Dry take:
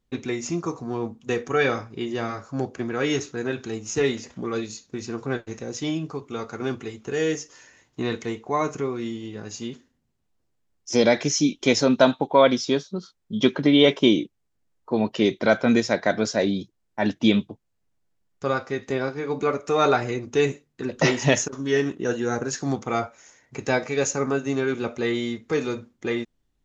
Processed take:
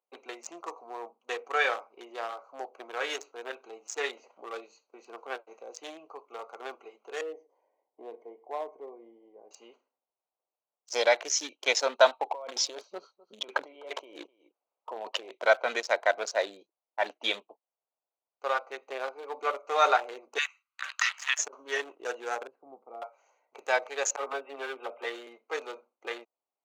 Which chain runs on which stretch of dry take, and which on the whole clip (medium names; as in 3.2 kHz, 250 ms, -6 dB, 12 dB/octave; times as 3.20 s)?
7.21–9.51 s: boxcar filter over 33 samples + delay 109 ms -21.5 dB
12.26–15.31 s: compressor with a negative ratio -27 dBFS + delay 254 ms -19 dB
20.38–21.39 s: elliptic high-pass 1.2 kHz, stop band 60 dB + band-stop 5.7 kHz, Q 16 + three bands compressed up and down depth 100%
22.47–23.02 s: band-pass filter 150 Hz, Q 0.84 + distance through air 260 m
24.16–25.27 s: brick-wall FIR low-pass 3.8 kHz + phase dispersion lows, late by 41 ms, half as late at 510 Hz
whole clip: local Wiener filter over 25 samples; high-pass 610 Hz 24 dB/octave; peaking EQ 5.1 kHz -3.5 dB 0.36 oct